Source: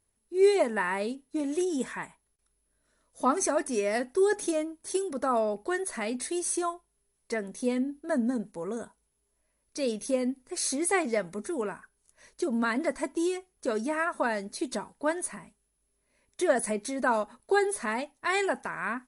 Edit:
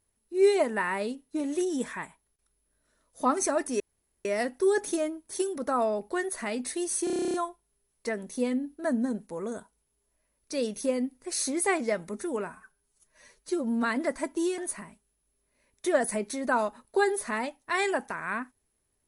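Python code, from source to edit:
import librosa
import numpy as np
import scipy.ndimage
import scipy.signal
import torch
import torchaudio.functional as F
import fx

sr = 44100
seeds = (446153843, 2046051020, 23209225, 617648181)

y = fx.edit(x, sr, fx.insert_room_tone(at_s=3.8, length_s=0.45),
    fx.stutter(start_s=6.59, slice_s=0.03, count=11),
    fx.stretch_span(start_s=11.73, length_s=0.9, factor=1.5),
    fx.cut(start_s=13.38, length_s=1.75), tone=tone)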